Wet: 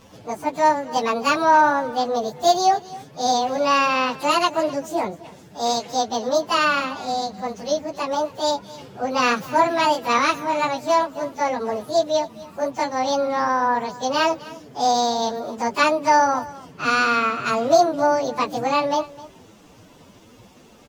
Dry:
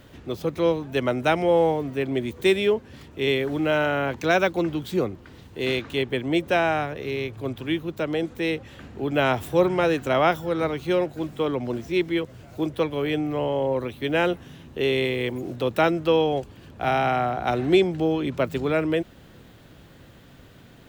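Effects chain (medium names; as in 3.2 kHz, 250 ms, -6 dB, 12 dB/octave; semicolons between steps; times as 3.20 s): frequency-domain pitch shifter +10.5 st; delay 259 ms -19 dB; trim +5 dB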